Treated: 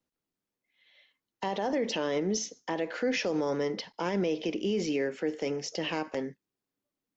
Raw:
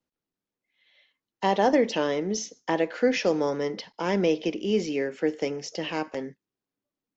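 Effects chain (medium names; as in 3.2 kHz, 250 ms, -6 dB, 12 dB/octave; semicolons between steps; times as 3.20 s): peak limiter -21 dBFS, peak gain reduction 10.5 dB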